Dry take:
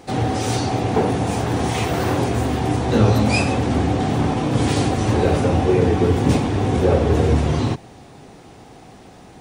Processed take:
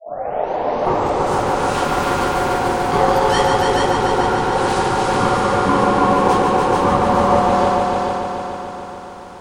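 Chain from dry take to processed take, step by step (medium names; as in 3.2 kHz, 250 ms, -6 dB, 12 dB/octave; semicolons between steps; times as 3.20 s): tape start-up on the opening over 1.38 s; ring modulator 650 Hz; multi-head delay 145 ms, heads all three, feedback 62%, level -6.5 dB; trim +1 dB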